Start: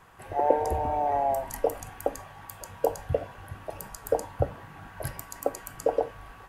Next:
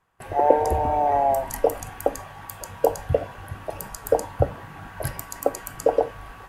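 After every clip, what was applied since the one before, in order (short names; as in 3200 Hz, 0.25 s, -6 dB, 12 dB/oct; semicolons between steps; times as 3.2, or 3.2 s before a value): gate with hold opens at -39 dBFS; gain +5.5 dB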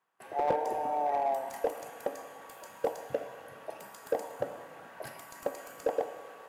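Bessel high-pass 270 Hz, order 4; Schroeder reverb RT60 2.1 s, combs from 26 ms, DRR 10.5 dB; slew limiter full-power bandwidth 140 Hz; gain -9 dB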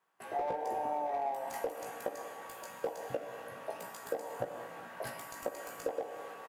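compressor 6:1, threshold -34 dBFS, peak gain reduction 11.5 dB; doubler 17 ms -4.5 dB; gain +1 dB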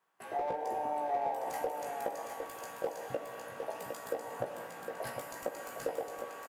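echo 0.759 s -6 dB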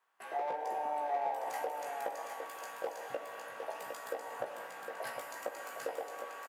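HPF 1200 Hz 6 dB/oct; high shelf 3500 Hz -8 dB; gain +5 dB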